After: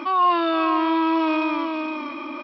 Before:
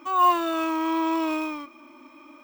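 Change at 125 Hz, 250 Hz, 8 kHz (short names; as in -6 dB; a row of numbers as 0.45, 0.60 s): n/a, +5.0 dB, under -15 dB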